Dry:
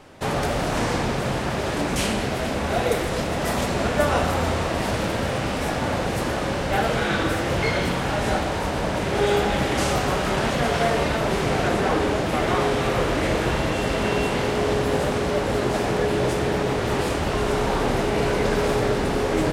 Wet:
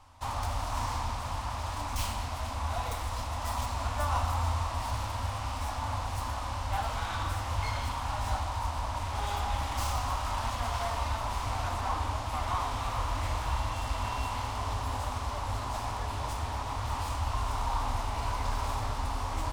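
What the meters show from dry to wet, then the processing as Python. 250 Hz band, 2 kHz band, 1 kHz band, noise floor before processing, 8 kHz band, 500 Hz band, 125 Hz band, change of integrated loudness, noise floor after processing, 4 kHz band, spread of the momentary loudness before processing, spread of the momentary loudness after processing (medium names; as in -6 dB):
-20.5 dB, -14.5 dB, -6.0 dB, -26 dBFS, -8.5 dB, -20.0 dB, -7.0 dB, -10.5 dB, -36 dBFS, -10.5 dB, 3 LU, 3 LU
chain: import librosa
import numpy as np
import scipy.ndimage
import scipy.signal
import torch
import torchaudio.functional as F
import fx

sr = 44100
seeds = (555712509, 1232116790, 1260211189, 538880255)

y = fx.tracing_dist(x, sr, depth_ms=0.055)
y = fx.curve_eq(y, sr, hz=(100.0, 160.0, 260.0, 390.0, 1000.0, 1600.0, 5200.0), db=(0, -28, -14, -29, 1, -14, -6))
y = y * 10.0 ** (-2.0 / 20.0)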